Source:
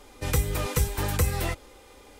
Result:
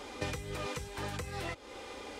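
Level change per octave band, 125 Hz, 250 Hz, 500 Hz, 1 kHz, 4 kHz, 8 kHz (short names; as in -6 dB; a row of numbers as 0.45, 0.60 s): -14.5, -8.5, -7.5, -6.5, -6.5, -14.5 dB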